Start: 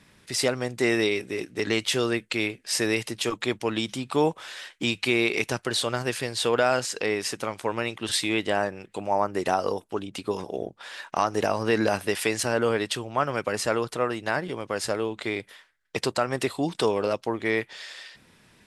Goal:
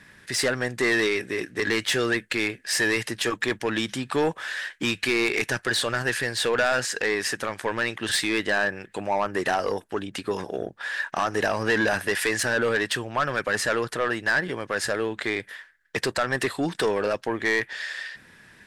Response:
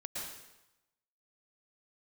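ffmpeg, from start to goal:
-af "equalizer=f=1.7k:t=o:w=0.4:g=13,asoftclip=type=tanh:threshold=-18dB,volume=2dB"

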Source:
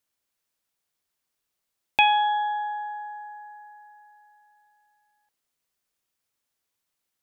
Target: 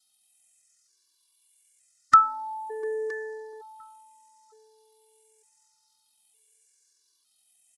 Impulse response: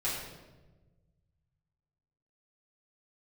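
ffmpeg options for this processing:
-filter_complex "[0:a]afftfilt=real='re*pow(10,11/40*sin(2*PI*(0.52*log(max(b,1)*sr/1024/100)/log(2)-(-0.89)*(pts-256)/sr)))':imag='im*pow(10,11/40*sin(2*PI*(0.52*log(max(b,1)*sr/1024/100)/log(2)-(-0.89)*(pts-256)/sr)))':win_size=1024:overlap=0.75,asetrate=41013,aresample=44100,crystalizer=i=8.5:c=0,highpass=f=150:p=1,equalizer=f=3k:w=0.67:g=-4,asplit=2[a][b];[b]aecho=0:1:963:0.178[c];[a][c]amix=inputs=2:normalize=0,asetrate=24750,aresample=44100,atempo=1.7818,bandreject=f=510:w=12,asplit=2[d][e];[e]adelay=698,lowpass=f=850:p=1,volume=-17.5dB,asplit=2[f][g];[g]adelay=698,lowpass=f=850:p=1,volume=0.17[h];[f][h]amix=inputs=2:normalize=0[i];[d][i]amix=inputs=2:normalize=0,afftfilt=real='re*gt(sin(2*PI*0.55*pts/sr)*(1-2*mod(floor(b*sr/1024/300),2)),0)':imag='im*gt(sin(2*PI*0.55*pts/sr)*(1-2*mod(floor(b*sr/1024/300),2)),0)':win_size=1024:overlap=0.75,volume=-4.5dB"

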